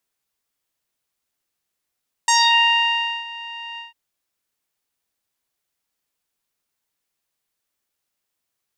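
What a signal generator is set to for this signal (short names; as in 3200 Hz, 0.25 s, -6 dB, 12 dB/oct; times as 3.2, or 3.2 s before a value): synth note saw A#5 12 dB/oct, low-pass 2800 Hz, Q 4.8, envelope 1.5 oct, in 0.27 s, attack 3.4 ms, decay 0.96 s, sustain -21 dB, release 0.15 s, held 1.50 s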